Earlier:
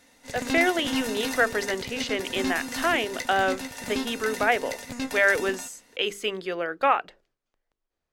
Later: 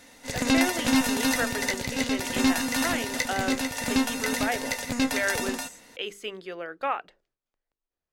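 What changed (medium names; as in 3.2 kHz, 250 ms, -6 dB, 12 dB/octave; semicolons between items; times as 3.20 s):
speech -7.0 dB; background +6.5 dB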